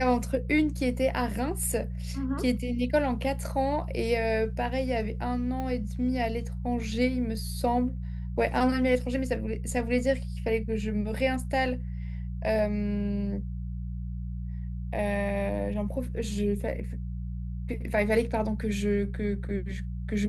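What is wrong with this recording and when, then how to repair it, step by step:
hum 60 Hz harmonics 3 -34 dBFS
5.60 s: pop -22 dBFS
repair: de-click; de-hum 60 Hz, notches 3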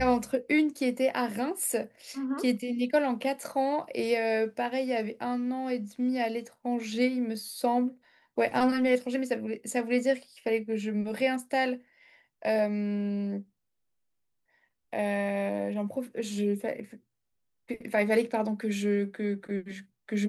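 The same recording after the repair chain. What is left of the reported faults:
5.60 s: pop

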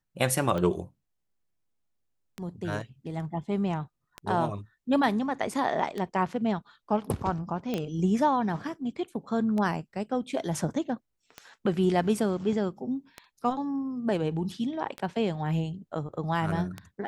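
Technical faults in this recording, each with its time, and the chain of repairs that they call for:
tick 33 1/3 rpm -20 dBFS
7.74 s: pop -17 dBFS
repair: de-click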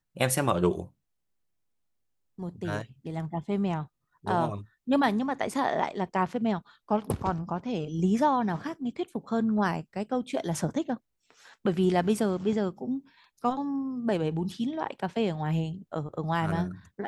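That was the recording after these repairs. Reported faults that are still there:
nothing left

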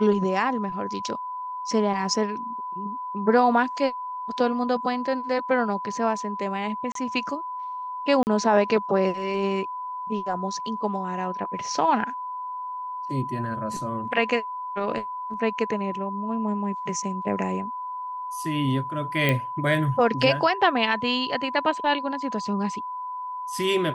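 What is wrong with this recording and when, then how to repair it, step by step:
whine 1 kHz -30 dBFS
6.92–6.95 s: dropout 33 ms
8.23–8.27 s: dropout 39 ms
19.29 s: pop -9 dBFS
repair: de-click; band-stop 1 kHz, Q 30; interpolate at 6.92 s, 33 ms; interpolate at 8.23 s, 39 ms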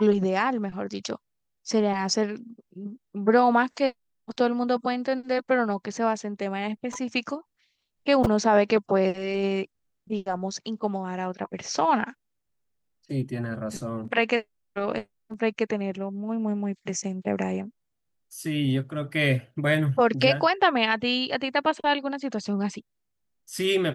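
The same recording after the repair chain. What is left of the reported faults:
nothing left

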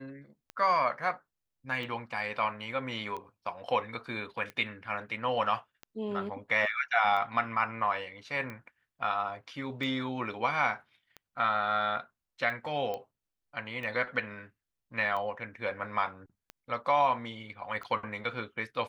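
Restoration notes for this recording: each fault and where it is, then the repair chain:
tick 45 rpm -27 dBFS
12.94 s: pop -23 dBFS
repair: de-click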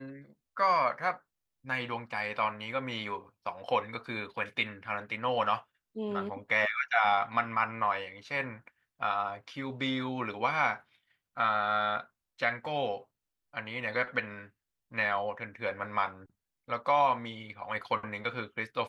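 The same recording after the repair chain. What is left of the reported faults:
nothing left

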